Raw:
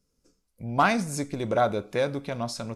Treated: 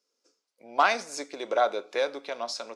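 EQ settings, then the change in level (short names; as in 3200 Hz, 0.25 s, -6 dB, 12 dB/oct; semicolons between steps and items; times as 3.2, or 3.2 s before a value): HPF 190 Hz 12 dB/oct; tone controls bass -9 dB, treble +9 dB; three-band isolator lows -24 dB, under 300 Hz, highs -23 dB, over 5600 Hz; 0.0 dB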